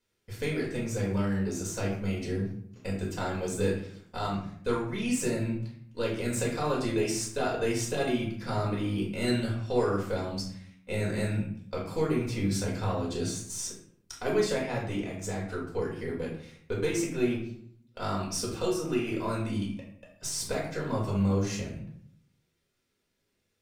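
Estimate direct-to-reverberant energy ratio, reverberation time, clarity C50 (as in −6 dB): −5.0 dB, 0.65 s, 4.5 dB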